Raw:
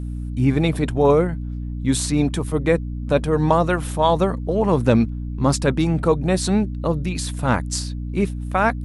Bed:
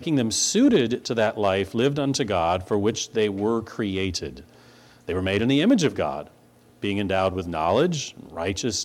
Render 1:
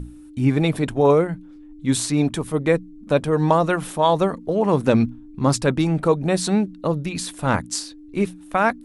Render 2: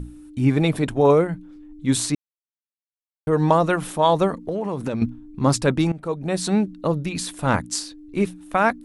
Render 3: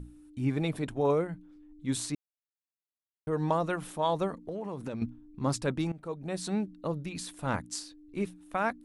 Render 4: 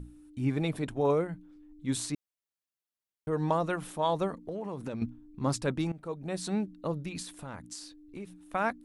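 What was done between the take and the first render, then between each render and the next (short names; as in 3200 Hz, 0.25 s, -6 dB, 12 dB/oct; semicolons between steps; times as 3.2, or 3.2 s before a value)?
notches 60/120/180/240 Hz
2.15–3.27 mute; 4.39–5.02 compressor 10:1, threshold -21 dBFS; 5.92–6.6 fade in, from -17 dB
gain -11 dB
7.22–8.47 compressor 4:1, threshold -39 dBFS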